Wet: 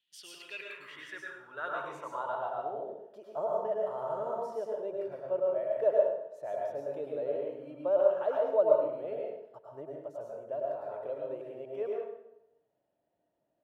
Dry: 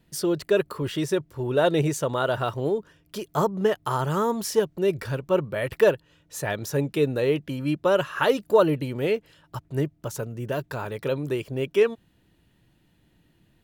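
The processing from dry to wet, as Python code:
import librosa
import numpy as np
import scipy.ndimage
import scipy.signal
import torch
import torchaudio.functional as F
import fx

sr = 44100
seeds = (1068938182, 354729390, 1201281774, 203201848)

y = fx.high_shelf(x, sr, hz=6100.0, db=9.5)
y = fx.rev_plate(y, sr, seeds[0], rt60_s=0.83, hf_ratio=0.75, predelay_ms=90, drr_db=-2.5)
y = fx.filter_sweep_bandpass(y, sr, from_hz=3200.0, to_hz=630.0, start_s=0.1, end_s=2.95, q=5.8)
y = y * librosa.db_to_amplitude(-3.5)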